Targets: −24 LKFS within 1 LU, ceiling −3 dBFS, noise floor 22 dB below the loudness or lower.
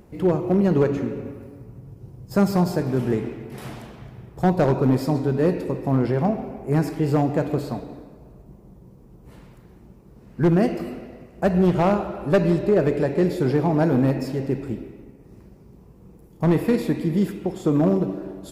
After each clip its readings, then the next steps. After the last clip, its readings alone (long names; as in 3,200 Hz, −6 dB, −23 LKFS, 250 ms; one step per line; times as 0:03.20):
share of clipped samples 0.7%; peaks flattened at −11.5 dBFS; integrated loudness −22.0 LKFS; sample peak −11.5 dBFS; target loudness −24.0 LKFS
→ clipped peaks rebuilt −11.5 dBFS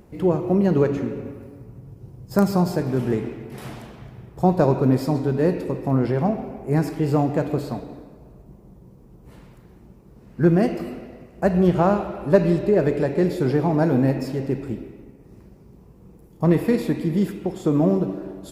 share of clipped samples 0.0%; integrated loudness −21.5 LKFS; sample peak −2.5 dBFS; target loudness −24.0 LKFS
→ level −2.5 dB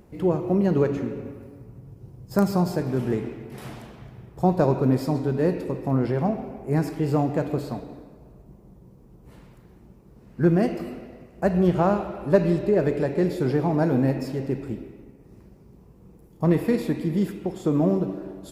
integrated loudness −24.0 LKFS; sample peak −5.0 dBFS; background noise floor −52 dBFS